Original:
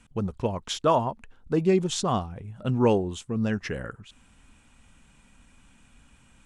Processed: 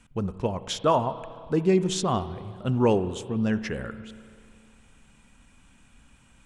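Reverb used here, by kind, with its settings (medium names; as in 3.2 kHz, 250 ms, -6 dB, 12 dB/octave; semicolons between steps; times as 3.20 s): spring tank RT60 2.4 s, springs 32/59 ms, chirp 50 ms, DRR 13 dB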